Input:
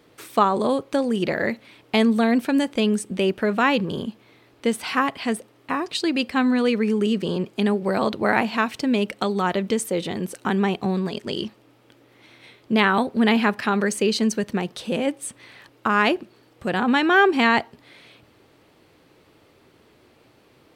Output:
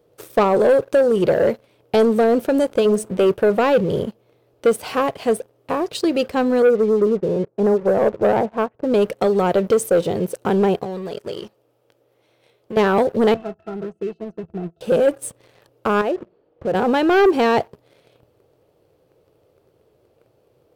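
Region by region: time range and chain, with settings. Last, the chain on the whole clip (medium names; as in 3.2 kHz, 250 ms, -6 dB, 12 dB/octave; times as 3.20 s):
2.19–3.33 s: de-hum 217.3 Hz, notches 3 + tape noise reduction on one side only decoder only
6.62–8.94 s: low-pass 1.6 kHz 24 dB/octave + upward expansion, over -36 dBFS
10.83–12.77 s: bass shelf 390 Hz -8 dB + compression 4:1, threshold -31 dBFS
13.34–14.81 s: treble shelf 3.2 kHz -10 dB + pitch-class resonator E, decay 0.12 s
16.01–16.75 s: distance through air 330 m + hum notches 60/120/180 Hz + compression 3:1, threshold -26 dBFS
whole clip: ten-band graphic EQ 125 Hz +3 dB, 250 Hz -10 dB, 500 Hz +9 dB, 1 kHz -5 dB, 2 kHz -11 dB, 4 kHz -7 dB, 8 kHz -5 dB; waveshaping leveller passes 2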